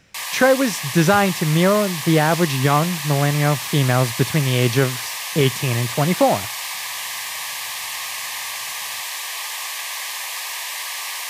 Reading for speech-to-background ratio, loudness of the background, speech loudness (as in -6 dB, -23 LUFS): 7.0 dB, -26.0 LUFS, -19.0 LUFS